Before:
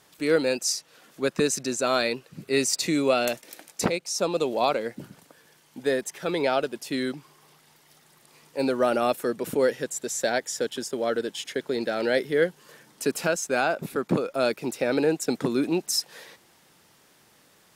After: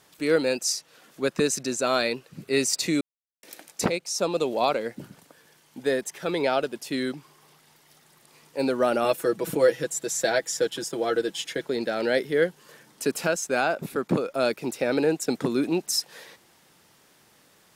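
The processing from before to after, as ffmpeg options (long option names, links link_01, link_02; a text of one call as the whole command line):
ffmpeg -i in.wav -filter_complex "[0:a]asettb=1/sr,asplit=3[link_01][link_02][link_03];[link_01]atrim=end=9.044[link_04];[link_02]atrim=start=9.04:end=11.66,asetpts=PTS-STARTPTS,afade=type=in:duration=0.004:curve=qsin,afade=type=out:start_time=2.616:duration=0.004:curve=qsin,aecho=1:1:6.1:0.73,atrim=end_sample=115542[link_05];[link_03]atrim=start=11.656[link_06];[link_04][link_05]acrossfade=duration=0.004:curve1=hsin:curve2=qsin[link_07];[link_07][link_06]acrossfade=duration=0.004:curve1=qsin:curve2=hsin,asplit=3[link_08][link_09][link_10];[link_08]atrim=end=3.01,asetpts=PTS-STARTPTS,afade=type=out:start_time=3.006:duration=0.004:curve=hsin[link_11];[link_09]atrim=start=3.01:end=3.43,asetpts=PTS-STARTPTS,volume=0[link_12];[link_10]atrim=start=3.43,asetpts=PTS-STARTPTS,afade=type=in:duration=0.004:curve=hsin[link_13];[link_11][link_12][link_13]concat=n=3:v=0:a=1" out.wav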